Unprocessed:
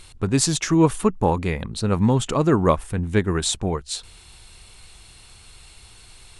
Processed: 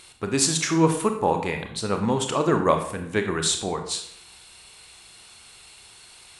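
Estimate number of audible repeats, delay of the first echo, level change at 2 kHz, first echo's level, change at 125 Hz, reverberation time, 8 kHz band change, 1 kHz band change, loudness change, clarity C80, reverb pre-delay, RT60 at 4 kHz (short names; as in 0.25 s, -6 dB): none, none, +1.0 dB, none, -7.0 dB, 0.65 s, +1.0 dB, +0.5 dB, -2.0 dB, 11.0 dB, 25 ms, 0.50 s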